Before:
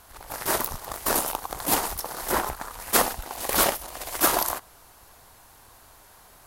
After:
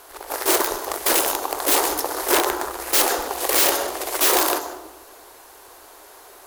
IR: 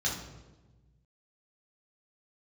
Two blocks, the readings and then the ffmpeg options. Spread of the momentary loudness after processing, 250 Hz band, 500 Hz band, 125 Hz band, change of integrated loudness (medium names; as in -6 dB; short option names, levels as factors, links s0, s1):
9 LU, +5.0 dB, +7.0 dB, no reading, +6.0 dB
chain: -filter_complex "[0:a]asplit=2[s0][s1];[1:a]atrim=start_sample=2205,adelay=130[s2];[s1][s2]afir=irnorm=-1:irlink=0,volume=0.133[s3];[s0][s3]amix=inputs=2:normalize=0,aeval=exprs='(mod(7.08*val(0)+1,2)-1)/7.08':c=same,lowshelf=f=250:t=q:w=3:g=-13.5,acrusher=bits=4:mode=log:mix=0:aa=0.000001,volume=2"